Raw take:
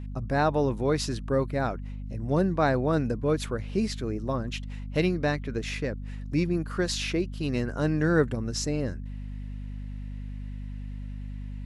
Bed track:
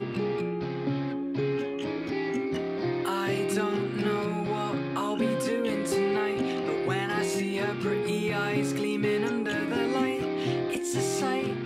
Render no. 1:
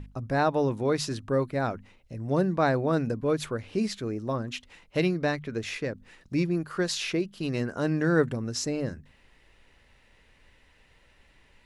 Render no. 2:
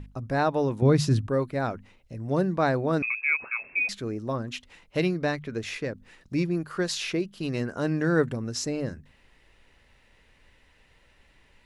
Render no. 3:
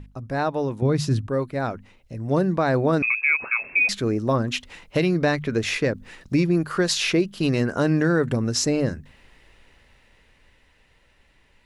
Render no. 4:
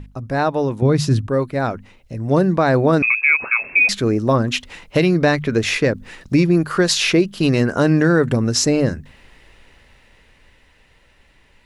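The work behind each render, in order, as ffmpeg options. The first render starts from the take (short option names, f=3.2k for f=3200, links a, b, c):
-af "bandreject=f=50:t=h:w=6,bandreject=f=100:t=h:w=6,bandreject=f=150:t=h:w=6,bandreject=f=200:t=h:w=6,bandreject=f=250:t=h:w=6"
-filter_complex "[0:a]asettb=1/sr,asplit=3[a][b][c];[a]atrim=end=0.824[d];[b]atrim=start=0.82:end=1.27,asetpts=PTS-STARTPTS,afade=t=in:d=0.004:c=qsin,afade=t=out:st=0.446:d=0.004:c=qsin,equalizer=f=120:w=0.61:g=14.5[e];[c]atrim=start=1.266[f];[d][e]acrossfade=d=0.004:c1=hsin:c2=qsin[g];[g][f]acrossfade=d=0.004:c1=qsin:c2=hsin,asettb=1/sr,asplit=3[h][i][j];[h]atrim=end=3.024[k];[i]atrim=start=3.02:end=3.89,asetpts=PTS-STARTPTS,afade=t=in:d=0.004:c=qsin,afade=t=out:st=0.866:d=0.004:c=qsin,lowpass=f=2.3k:t=q:w=0.5098,lowpass=f=2.3k:t=q:w=0.6013,lowpass=f=2.3k:t=q:w=0.9,lowpass=f=2.3k:t=q:w=2.563,afreqshift=-2700[l];[j]atrim=start=3.886[m];[k][l]acrossfade=d=0.004:c1=hsin:c2=qsin[n];[n][m]acrossfade=d=0.004:c1=qsin:c2=hsin"
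-af "dynaudnorm=f=220:g=21:m=11.5dB,alimiter=limit=-11dB:level=0:latency=1:release=122"
-af "volume=5.5dB"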